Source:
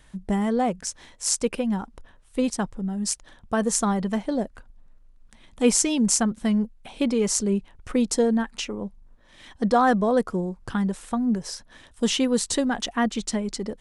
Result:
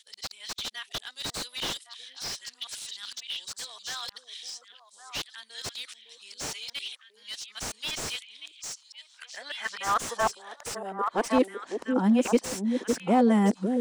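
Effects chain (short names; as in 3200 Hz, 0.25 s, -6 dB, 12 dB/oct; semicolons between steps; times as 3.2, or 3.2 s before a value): whole clip reversed; bell 140 Hz -7.5 dB 2.4 oct; in parallel at -1 dB: compressor, threshold -38 dBFS, peak gain reduction 20 dB; on the sum: high-pass sweep 3800 Hz -> 220 Hz, 8.66–11.78; on a send: delay with a stepping band-pass 0.556 s, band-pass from 340 Hz, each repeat 1.4 oct, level -1.5 dB; on the sum: slew limiter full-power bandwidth 110 Hz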